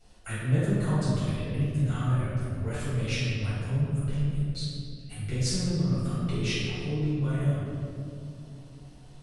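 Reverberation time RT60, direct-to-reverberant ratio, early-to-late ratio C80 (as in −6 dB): 2.6 s, −12.0 dB, −1.0 dB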